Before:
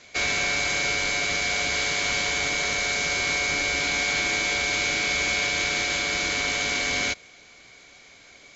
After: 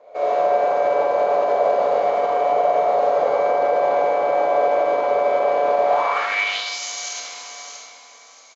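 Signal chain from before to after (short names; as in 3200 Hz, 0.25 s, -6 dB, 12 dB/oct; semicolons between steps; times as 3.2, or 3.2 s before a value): band shelf 730 Hz +12.5 dB; on a send: feedback echo 0.632 s, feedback 23%, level -10.5 dB; on the sum: digital reverb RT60 4.5 s, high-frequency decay 0.35×, pre-delay 10 ms, DRR -9 dB; limiter -5.5 dBFS, peak gain reduction 6 dB; band-pass sweep 560 Hz -> 6300 Hz, 5.85–6.82; gain +1 dB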